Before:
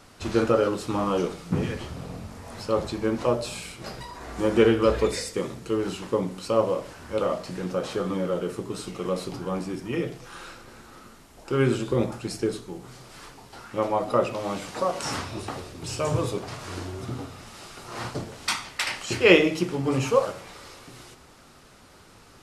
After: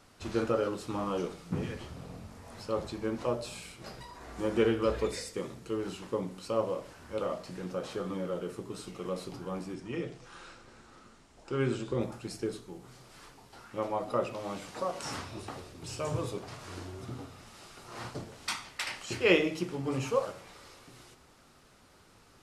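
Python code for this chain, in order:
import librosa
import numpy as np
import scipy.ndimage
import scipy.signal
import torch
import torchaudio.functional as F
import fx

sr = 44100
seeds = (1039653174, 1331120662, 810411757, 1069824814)

y = fx.lowpass(x, sr, hz=9000.0, slope=24, at=(9.74, 12.01))
y = F.gain(torch.from_numpy(y), -8.0).numpy()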